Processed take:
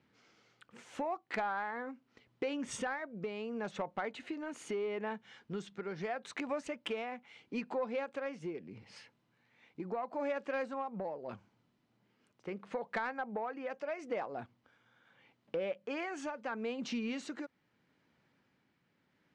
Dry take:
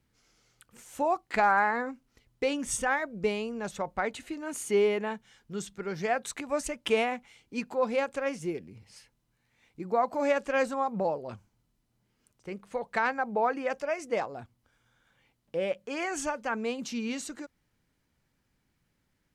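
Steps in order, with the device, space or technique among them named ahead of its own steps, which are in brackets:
AM radio (band-pass filter 170–3,500 Hz; downward compressor 4 to 1, threshold −40 dBFS, peak gain reduction 17 dB; soft clipping −30 dBFS, distortion −23 dB; amplitude tremolo 0.77 Hz, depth 33%)
level +5.5 dB

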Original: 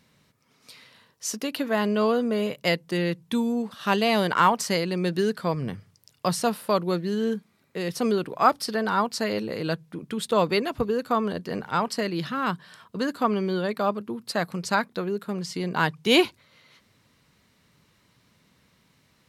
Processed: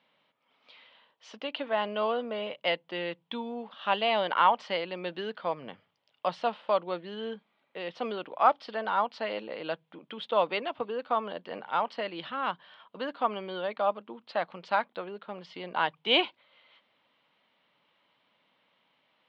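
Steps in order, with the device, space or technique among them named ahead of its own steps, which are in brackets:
phone earpiece (loudspeaker in its box 390–3,300 Hz, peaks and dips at 400 Hz −6 dB, 590 Hz +4 dB, 840 Hz +5 dB, 1,700 Hz −3 dB, 3,200 Hz +8 dB)
level −4.5 dB

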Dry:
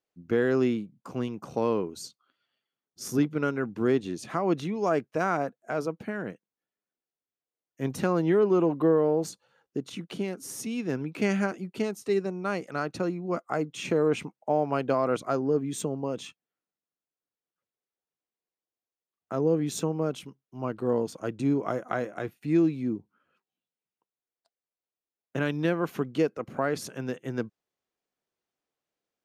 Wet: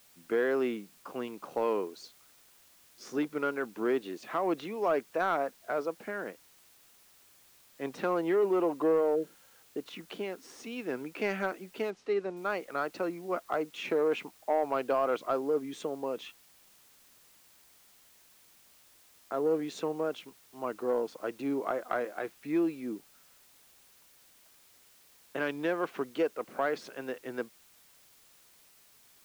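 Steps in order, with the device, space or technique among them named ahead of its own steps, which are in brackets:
tape answering machine (band-pass filter 390–3,400 Hz; soft clipping −18 dBFS, distortion −21 dB; tape wow and flutter; white noise bed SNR 27 dB)
0:09.18–0:09.48: healed spectral selection 630–9,300 Hz after
0:11.90–0:12.37: high-frequency loss of the air 89 metres

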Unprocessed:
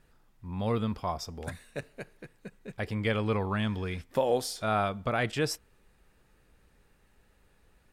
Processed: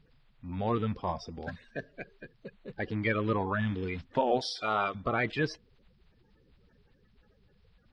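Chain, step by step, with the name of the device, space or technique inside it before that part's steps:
clip after many re-uploads (low-pass filter 4,500 Hz 24 dB per octave; spectral magnitudes quantised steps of 30 dB)
0:04.41–0:04.95: RIAA equalisation recording

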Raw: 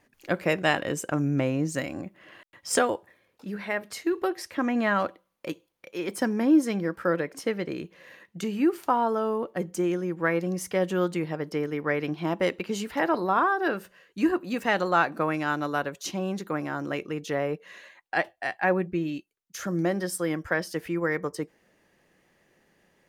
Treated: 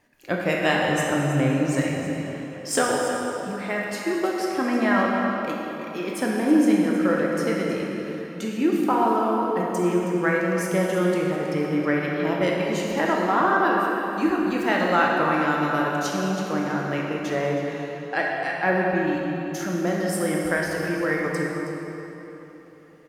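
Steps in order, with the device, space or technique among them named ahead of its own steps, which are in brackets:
cave (single-tap delay 320 ms −13 dB; convolution reverb RT60 3.7 s, pre-delay 15 ms, DRR −2.5 dB)

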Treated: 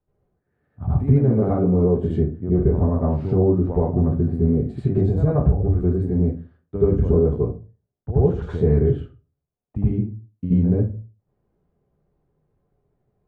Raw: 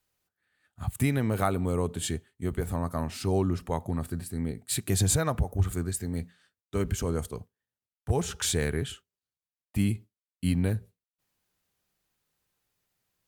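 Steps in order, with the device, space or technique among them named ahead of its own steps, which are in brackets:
television next door (downward compressor, threshold −30 dBFS, peak gain reduction 10.5 dB; low-pass filter 590 Hz 12 dB per octave; convolution reverb RT60 0.30 s, pre-delay 73 ms, DRR −8.5 dB)
level +6.5 dB

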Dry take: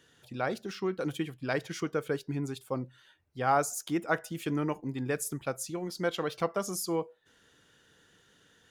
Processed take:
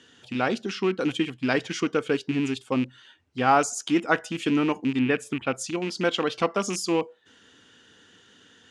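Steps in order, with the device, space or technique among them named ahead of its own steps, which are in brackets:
car door speaker with a rattle (loose part that buzzes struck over −39 dBFS, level −34 dBFS; loudspeaker in its box 83–8,200 Hz, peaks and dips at 150 Hz −7 dB, 250 Hz +7 dB, 590 Hz −4 dB, 3,000 Hz +5 dB)
0:04.99–0:05.55: high shelf with overshoot 3,800 Hz −9 dB, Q 1.5
level +7 dB

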